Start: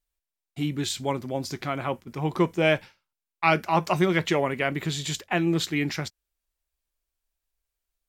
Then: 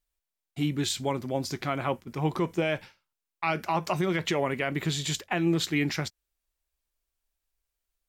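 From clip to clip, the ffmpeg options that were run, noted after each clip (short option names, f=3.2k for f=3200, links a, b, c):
-af "alimiter=limit=-16dB:level=0:latency=1:release=108"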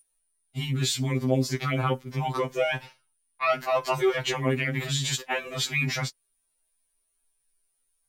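-af "aeval=exprs='val(0)+0.00447*sin(2*PI*9500*n/s)':c=same,afftfilt=real='re*2.45*eq(mod(b,6),0)':imag='im*2.45*eq(mod(b,6),0)':win_size=2048:overlap=0.75,volume=5.5dB"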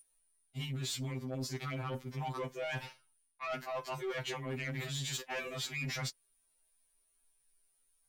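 -af "areverse,acompressor=threshold=-33dB:ratio=10,areverse,asoftclip=type=tanh:threshold=-31.5dB"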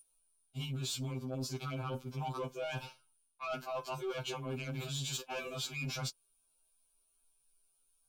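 -af "asuperstop=centerf=1900:order=4:qfactor=2.7"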